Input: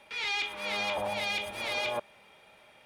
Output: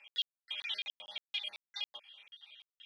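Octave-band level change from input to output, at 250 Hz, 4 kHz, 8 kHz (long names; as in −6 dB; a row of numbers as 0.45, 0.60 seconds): below −30 dB, −2.5 dB, −18.0 dB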